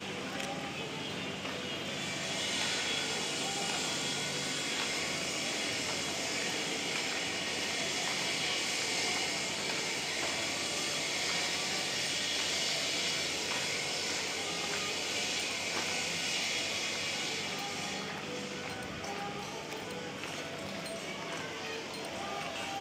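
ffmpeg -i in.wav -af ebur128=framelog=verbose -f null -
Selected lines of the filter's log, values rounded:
Integrated loudness:
  I:         -33.1 LUFS
  Threshold: -43.1 LUFS
Loudness range:
  LRA:         7.2 LU
  Threshold: -52.8 LUFS
  LRA low:   -38.5 LUFS
  LRA high:  -31.2 LUFS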